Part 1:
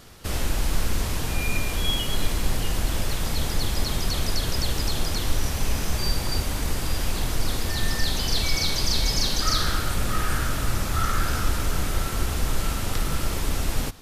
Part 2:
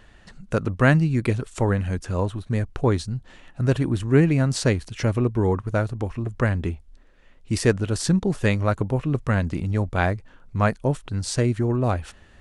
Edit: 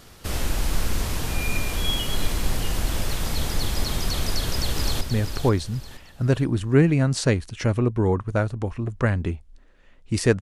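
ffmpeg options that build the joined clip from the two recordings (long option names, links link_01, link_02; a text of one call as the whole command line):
ffmpeg -i cue0.wav -i cue1.wav -filter_complex "[0:a]apad=whole_dur=10.41,atrim=end=10.41,atrim=end=5.012[link_01];[1:a]atrim=start=2.398:end=7.8[link_02];[link_01][link_02]acrossfade=duration=0.004:curve1=hsin:curve2=hsin,asplit=2[link_03][link_04];[link_04]afade=type=in:start_time=4.28:duration=0.01,afade=type=out:start_time=5.01:duration=0.01,aecho=0:1:480|960|1440|1920:0.421697|0.147594|0.0516578|0.0180802[link_05];[link_03][link_05]amix=inputs=2:normalize=0" out.wav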